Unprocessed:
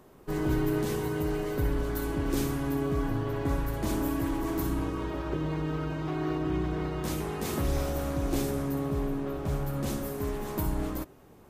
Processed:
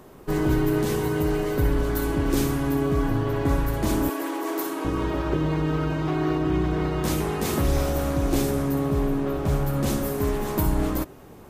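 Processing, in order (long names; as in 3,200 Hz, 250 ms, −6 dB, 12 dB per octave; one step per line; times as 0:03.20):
in parallel at +1 dB: speech leveller within 4 dB 0.5 s
0:04.09–0:04.85: on the sum: high-pass filter 340 Hz 24 dB per octave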